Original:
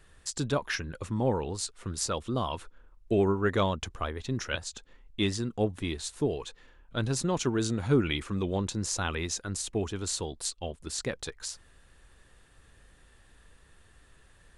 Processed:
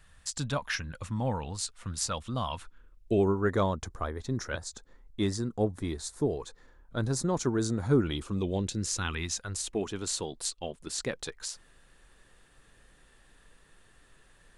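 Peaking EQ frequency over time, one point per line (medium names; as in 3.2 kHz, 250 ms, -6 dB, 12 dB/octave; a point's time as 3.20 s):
peaking EQ -13.5 dB 0.68 oct
2.57 s 380 Hz
3.42 s 2.8 kHz
7.99 s 2.8 kHz
9.34 s 420 Hz
9.88 s 71 Hz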